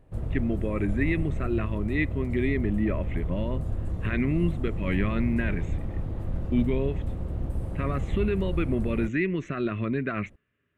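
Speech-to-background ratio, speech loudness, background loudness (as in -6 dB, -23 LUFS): 3.5 dB, -29.5 LUFS, -33.0 LUFS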